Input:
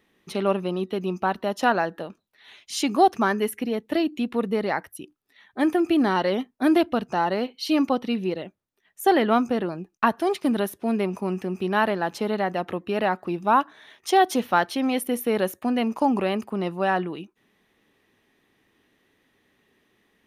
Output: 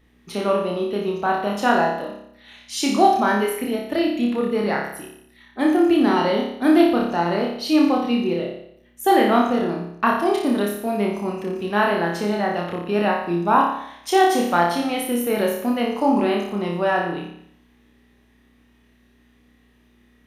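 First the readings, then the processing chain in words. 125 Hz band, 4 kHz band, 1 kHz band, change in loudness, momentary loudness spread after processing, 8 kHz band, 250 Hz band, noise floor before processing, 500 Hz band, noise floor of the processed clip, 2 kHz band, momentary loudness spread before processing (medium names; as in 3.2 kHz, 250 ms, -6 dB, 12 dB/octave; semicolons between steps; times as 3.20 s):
+3.0 dB, +3.5 dB, +3.5 dB, +3.5 dB, 10 LU, +3.5 dB, +4.0 dB, -70 dBFS, +3.5 dB, -57 dBFS, +3.5 dB, 9 LU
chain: hum 60 Hz, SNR 34 dB; flutter echo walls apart 5 m, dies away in 0.7 s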